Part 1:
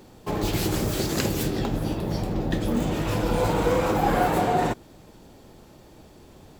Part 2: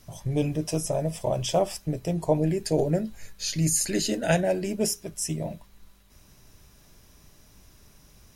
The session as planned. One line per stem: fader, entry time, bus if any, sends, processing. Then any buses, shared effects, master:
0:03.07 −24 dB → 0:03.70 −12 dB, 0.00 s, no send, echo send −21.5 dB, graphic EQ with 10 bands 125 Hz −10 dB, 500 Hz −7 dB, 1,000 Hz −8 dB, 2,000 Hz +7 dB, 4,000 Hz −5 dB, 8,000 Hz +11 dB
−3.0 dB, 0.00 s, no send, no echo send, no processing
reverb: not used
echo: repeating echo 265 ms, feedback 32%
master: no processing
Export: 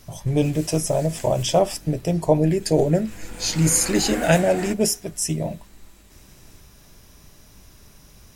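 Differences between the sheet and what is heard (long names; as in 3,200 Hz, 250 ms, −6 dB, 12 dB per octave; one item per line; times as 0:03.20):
stem 1 −24.0 dB → −16.0 dB
stem 2 −3.0 dB → +5.5 dB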